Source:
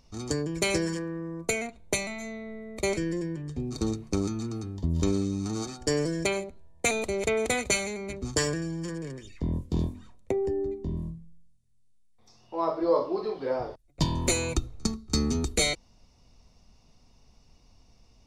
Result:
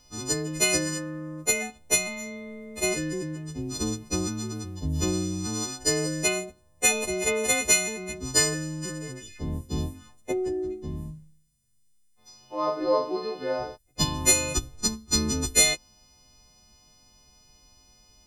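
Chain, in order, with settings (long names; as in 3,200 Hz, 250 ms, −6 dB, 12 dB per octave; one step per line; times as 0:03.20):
every partial snapped to a pitch grid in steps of 3 semitones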